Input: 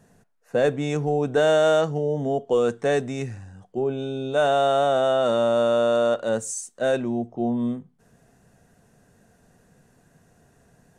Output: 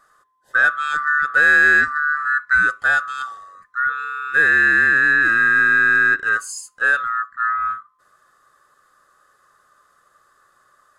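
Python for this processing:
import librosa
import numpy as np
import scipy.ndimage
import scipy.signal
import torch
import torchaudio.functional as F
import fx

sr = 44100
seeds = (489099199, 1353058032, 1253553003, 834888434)

y = fx.band_swap(x, sr, width_hz=1000)
y = fx.dynamic_eq(y, sr, hz=1800.0, q=1.5, threshold_db=-31.0, ratio=4.0, max_db=6)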